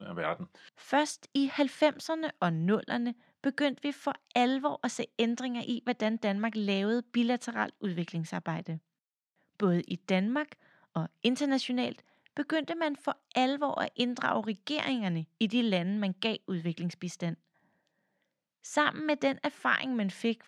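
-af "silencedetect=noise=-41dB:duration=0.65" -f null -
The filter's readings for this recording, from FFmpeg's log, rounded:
silence_start: 8.78
silence_end: 9.60 | silence_duration: 0.82
silence_start: 17.34
silence_end: 18.65 | silence_duration: 1.31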